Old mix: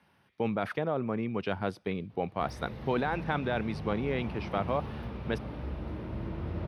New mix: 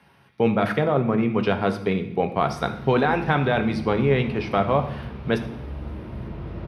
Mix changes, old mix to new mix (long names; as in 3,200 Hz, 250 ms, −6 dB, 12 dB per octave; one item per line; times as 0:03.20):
speech +6.5 dB
reverb: on, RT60 0.80 s